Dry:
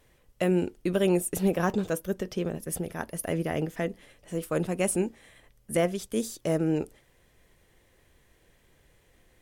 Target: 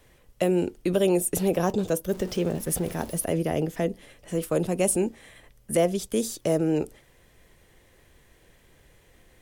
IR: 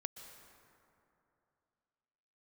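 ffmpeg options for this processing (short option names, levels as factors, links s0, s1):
-filter_complex "[0:a]asettb=1/sr,asplit=3[s0][s1][s2];[s0]atrim=end=2.094[s3];[s1]atrim=start=2.09:end=3.24,asetpts=PTS-STARTPTS,afade=t=in:d=0.004:c=qsin,afade=t=out:st=1.146:d=0.004:c=qsin,aeval=exprs='val(0)+0.5*0.00794*sgn(val(0))':c=same[s4];[s2]atrim=start=3.236[s5];[s3][s4]acrossfade=d=0.004:c1=hsin:c2=qsin[s6];[s6][s5]acrossfade=d=0.004:c1=qsin:c2=hsin,acrossover=split=360|970|2700[s7][s8][s9][s10];[s7]alimiter=level_in=1.5:limit=0.0631:level=0:latency=1,volume=0.668[s11];[s9]acompressor=threshold=0.00251:ratio=6[s12];[s11][s8][s12][s10]amix=inputs=4:normalize=0,volume=1.78"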